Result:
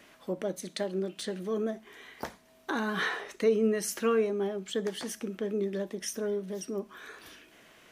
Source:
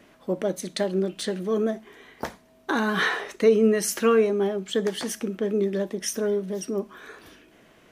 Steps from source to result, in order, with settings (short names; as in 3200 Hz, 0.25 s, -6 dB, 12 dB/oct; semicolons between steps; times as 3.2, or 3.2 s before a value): 0.69–1.19 HPF 150 Hz; mismatched tape noise reduction encoder only; gain -7 dB